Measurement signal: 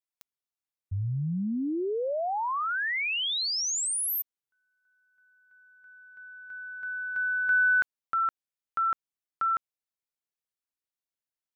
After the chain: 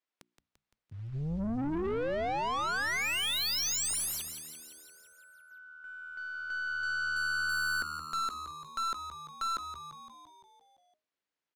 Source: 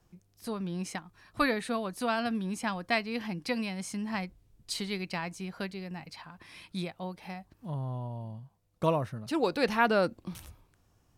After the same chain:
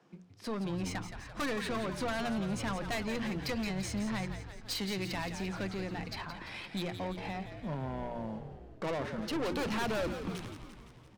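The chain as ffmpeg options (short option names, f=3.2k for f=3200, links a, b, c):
-filter_complex "[0:a]highpass=f=180:w=0.5412,highpass=f=180:w=1.3066,equalizer=f=850:w=1.3:g=-2,bandreject=f=60:t=h:w=6,bandreject=f=120:t=h:w=6,bandreject=f=180:t=h:w=6,bandreject=f=240:t=h:w=6,bandreject=f=300:t=h:w=6,bandreject=f=360:t=h:w=6,asplit=2[a][b];[b]acompressor=threshold=-39dB:ratio=4:attack=3.1:release=101:knee=1,volume=0.5dB[c];[a][c]amix=inputs=2:normalize=0,acrusher=bits=5:mode=log:mix=0:aa=0.000001,adynamicsmooth=sensitivity=6:basefreq=3.9k,aeval=exprs='(tanh(50.1*val(0)+0.2)-tanh(0.2))/50.1':c=same,asplit=9[d][e][f][g][h][i][j][k][l];[e]adelay=171,afreqshift=-78,volume=-9dB[m];[f]adelay=342,afreqshift=-156,volume=-13dB[n];[g]adelay=513,afreqshift=-234,volume=-17dB[o];[h]adelay=684,afreqshift=-312,volume=-21dB[p];[i]adelay=855,afreqshift=-390,volume=-25.1dB[q];[j]adelay=1026,afreqshift=-468,volume=-29.1dB[r];[k]adelay=1197,afreqshift=-546,volume=-33.1dB[s];[l]adelay=1368,afreqshift=-624,volume=-37.1dB[t];[d][m][n][o][p][q][r][s][t]amix=inputs=9:normalize=0,volume=2.5dB"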